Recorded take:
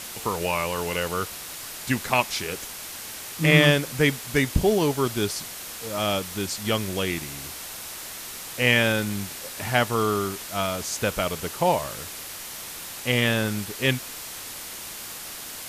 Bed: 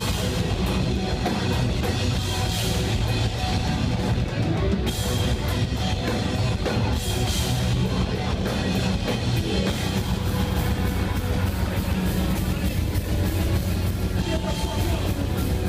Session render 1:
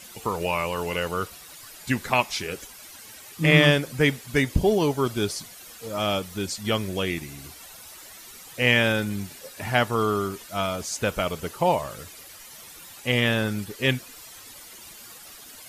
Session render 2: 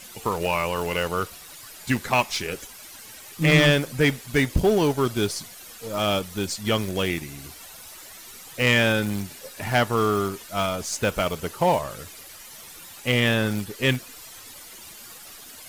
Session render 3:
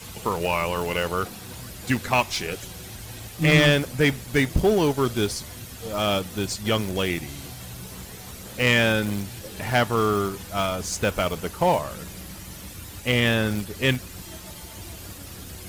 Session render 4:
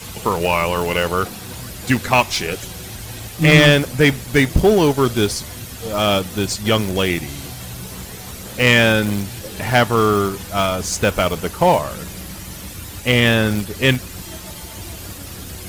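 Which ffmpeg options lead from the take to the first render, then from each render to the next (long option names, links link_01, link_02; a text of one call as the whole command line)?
ffmpeg -i in.wav -af "afftdn=noise_reduction=12:noise_floor=-38" out.wav
ffmpeg -i in.wav -filter_complex "[0:a]asplit=2[link_01][link_02];[link_02]acrusher=bits=5:dc=4:mix=0:aa=0.000001,volume=-10dB[link_03];[link_01][link_03]amix=inputs=2:normalize=0,asoftclip=type=tanh:threshold=-10dB" out.wav
ffmpeg -i in.wav -i bed.wav -filter_complex "[1:a]volume=-17.5dB[link_01];[0:a][link_01]amix=inputs=2:normalize=0" out.wav
ffmpeg -i in.wav -af "volume=6.5dB" out.wav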